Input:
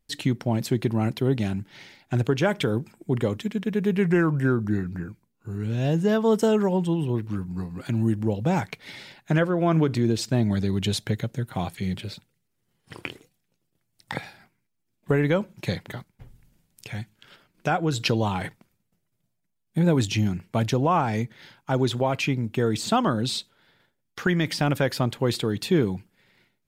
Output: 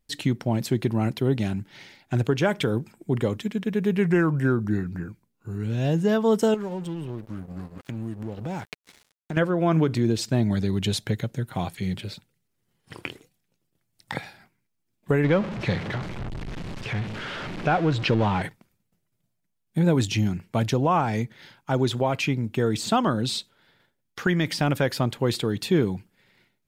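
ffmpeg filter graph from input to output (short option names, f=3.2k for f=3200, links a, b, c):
-filter_complex "[0:a]asettb=1/sr,asplit=3[a][b][c];[a]atrim=end=6.544[d];[b]atrim=start=6.54:end=9.37,asetpts=PTS-STARTPTS,afade=t=in:d=0.004:c=qsin,afade=t=out:st=2.826:d=0.004:c=qsin,aeval=exprs='sgn(val(0))*max(abs(val(0))-0.0133,0)':c=same,acompressor=threshold=-30dB:ratio=3:attack=3.2:release=140:knee=1:detection=peak[e];[c]atrim=start=9.366[f];[d][e]acrossfade=d=0.004:c1=hsin:c2=qsin[g];[g][f]acrossfade=d=0.004:c1=qsin:c2=hsin,asettb=1/sr,asplit=3[h][i][j];[h]atrim=end=15.244[k];[i]atrim=start=15.24:end=18.42,asetpts=PTS-STARTPTS,afade=t=in:d=0.004:c=qsin,afade=t=out:st=3.176:d=0.004:c=qsin,aeval=exprs='val(0)+0.5*0.0473*sgn(val(0))':c=same,lowpass=3.1k[l];[j]atrim=start=18.416[m];[k][l]acrossfade=d=0.004:c1=hsin:c2=qsin[n];[n][m]acrossfade=d=0.004:c1=qsin:c2=hsin"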